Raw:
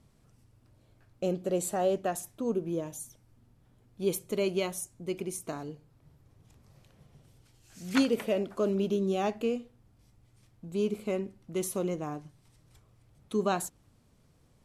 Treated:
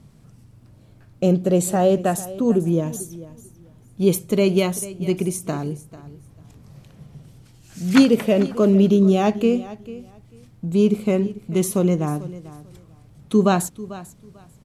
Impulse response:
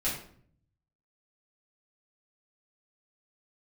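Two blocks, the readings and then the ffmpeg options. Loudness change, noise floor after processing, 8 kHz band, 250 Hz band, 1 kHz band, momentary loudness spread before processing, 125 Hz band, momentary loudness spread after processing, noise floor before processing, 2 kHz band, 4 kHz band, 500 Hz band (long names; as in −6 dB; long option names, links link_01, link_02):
+12.0 dB, −51 dBFS, +9.0 dB, +14.5 dB, +9.5 dB, 12 LU, +16.5 dB, 19 LU, −65 dBFS, +9.0 dB, +9.0 dB, +10.5 dB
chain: -filter_complex "[0:a]equalizer=frequency=160:width=1.1:gain=8.5,asplit=2[link_01][link_02];[link_02]aecho=0:1:444|888:0.141|0.0268[link_03];[link_01][link_03]amix=inputs=2:normalize=0,volume=9dB"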